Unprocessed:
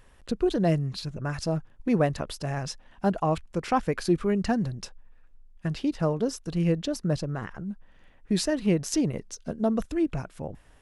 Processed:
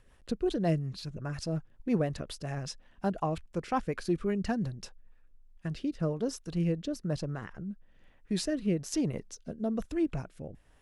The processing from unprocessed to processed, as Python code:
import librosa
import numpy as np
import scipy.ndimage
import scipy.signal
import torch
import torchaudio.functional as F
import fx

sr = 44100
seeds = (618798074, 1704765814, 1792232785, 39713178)

y = fx.rotary_switch(x, sr, hz=5.5, then_hz=1.1, switch_at_s=4.66)
y = F.gain(torch.from_numpy(y), -3.5).numpy()